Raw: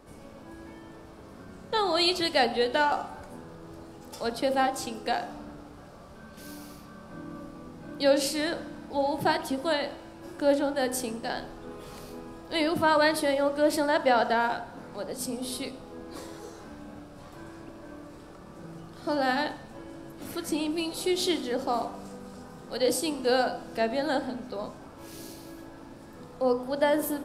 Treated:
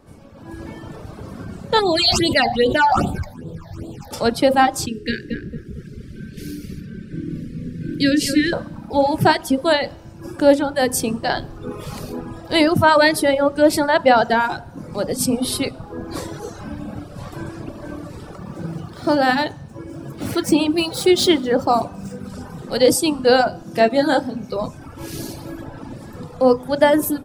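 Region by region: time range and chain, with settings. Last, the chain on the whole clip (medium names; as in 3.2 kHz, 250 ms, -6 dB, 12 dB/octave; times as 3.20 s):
1.79–4.11 s: phase shifter stages 8, 2.5 Hz, lowest notch 340–1900 Hz + decay stretcher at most 48 dB/s
4.86–8.53 s: Chebyshev band-stop 420–1700 Hz, order 3 + treble shelf 4.1 kHz -7 dB + filtered feedback delay 226 ms, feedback 43%, low-pass 1.7 kHz, level -3.5 dB
18.38–22.30 s: median filter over 3 samples + high-pass 49 Hz
23.63–24.54 s: high-pass 96 Hz + doubling 25 ms -6 dB
whole clip: reverb removal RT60 1.2 s; peaking EQ 110 Hz +9 dB 1.7 oct; level rider gain up to 13 dB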